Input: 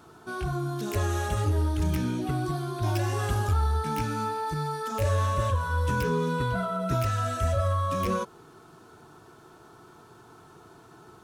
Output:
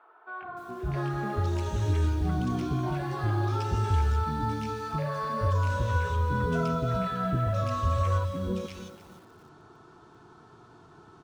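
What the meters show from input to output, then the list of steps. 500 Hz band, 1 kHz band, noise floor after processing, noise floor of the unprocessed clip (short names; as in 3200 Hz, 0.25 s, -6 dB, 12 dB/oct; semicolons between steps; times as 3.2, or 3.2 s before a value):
-2.5 dB, -1.5 dB, -55 dBFS, -53 dBFS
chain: air absorption 100 m; three bands offset in time mids, lows, highs 0.42/0.65 s, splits 540/2300 Hz; lo-fi delay 0.294 s, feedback 35%, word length 8-bit, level -12 dB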